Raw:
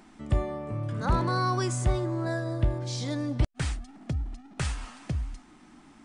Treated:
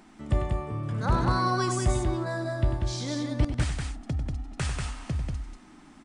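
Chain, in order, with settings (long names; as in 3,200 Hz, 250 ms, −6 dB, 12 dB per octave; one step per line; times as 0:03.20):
on a send: loudspeakers that aren't time-aligned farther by 33 metres −9 dB, 65 metres −4 dB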